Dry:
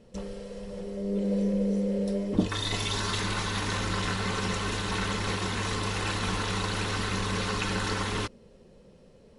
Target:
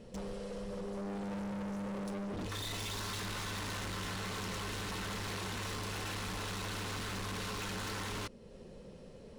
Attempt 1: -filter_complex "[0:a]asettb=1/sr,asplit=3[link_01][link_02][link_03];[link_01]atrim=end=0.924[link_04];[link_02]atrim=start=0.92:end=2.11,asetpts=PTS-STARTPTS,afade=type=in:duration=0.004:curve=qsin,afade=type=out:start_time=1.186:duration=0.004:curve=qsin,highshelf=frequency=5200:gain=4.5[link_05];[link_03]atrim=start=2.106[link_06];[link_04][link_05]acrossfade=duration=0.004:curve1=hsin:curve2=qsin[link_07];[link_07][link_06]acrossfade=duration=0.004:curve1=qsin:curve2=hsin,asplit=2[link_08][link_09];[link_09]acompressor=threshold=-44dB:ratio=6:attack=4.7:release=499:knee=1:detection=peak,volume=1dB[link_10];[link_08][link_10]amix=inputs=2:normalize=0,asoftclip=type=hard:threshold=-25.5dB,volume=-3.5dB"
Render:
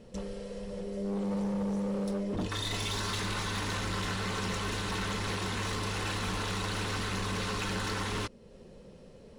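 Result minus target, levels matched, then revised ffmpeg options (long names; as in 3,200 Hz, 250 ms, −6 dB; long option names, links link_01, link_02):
hard clipping: distortion −7 dB
-filter_complex "[0:a]asettb=1/sr,asplit=3[link_01][link_02][link_03];[link_01]atrim=end=0.924[link_04];[link_02]atrim=start=0.92:end=2.11,asetpts=PTS-STARTPTS,afade=type=in:duration=0.004:curve=qsin,afade=type=out:start_time=1.186:duration=0.004:curve=qsin,highshelf=frequency=5200:gain=4.5[link_05];[link_03]atrim=start=2.106[link_06];[link_04][link_05]acrossfade=duration=0.004:curve1=hsin:curve2=qsin[link_07];[link_07][link_06]acrossfade=duration=0.004:curve1=qsin:curve2=hsin,asplit=2[link_08][link_09];[link_09]acompressor=threshold=-44dB:ratio=6:attack=4.7:release=499:knee=1:detection=peak,volume=1dB[link_10];[link_08][link_10]amix=inputs=2:normalize=0,asoftclip=type=hard:threshold=-34.5dB,volume=-3.5dB"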